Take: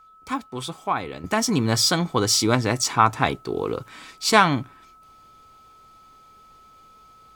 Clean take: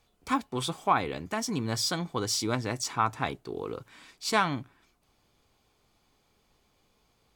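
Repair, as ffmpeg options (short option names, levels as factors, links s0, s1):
-af "bandreject=f=1300:w=30,asetnsamples=n=441:p=0,asendcmd='1.24 volume volume -9.5dB',volume=1"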